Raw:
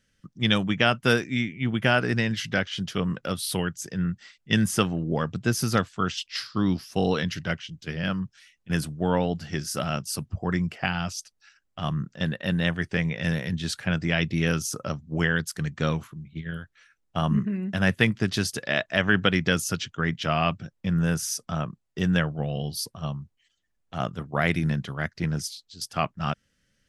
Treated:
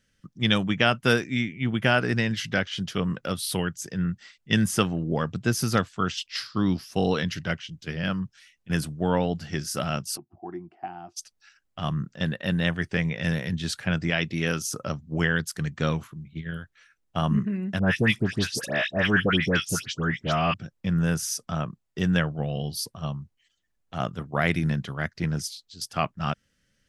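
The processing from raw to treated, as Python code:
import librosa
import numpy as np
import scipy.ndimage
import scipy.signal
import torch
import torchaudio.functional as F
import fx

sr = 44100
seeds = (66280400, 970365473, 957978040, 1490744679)

y = fx.double_bandpass(x, sr, hz=510.0, octaves=1.1, at=(10.16, 11.16), fade=0.02)
y = fx.low_shelf(y, sr, hz=120.0, db=-11.0, at=(14.1, 14.66))
y = fx.dispersion(y, sr, late='highs', ms=99.0, hz=1700.0, at=(17.79, 20.54))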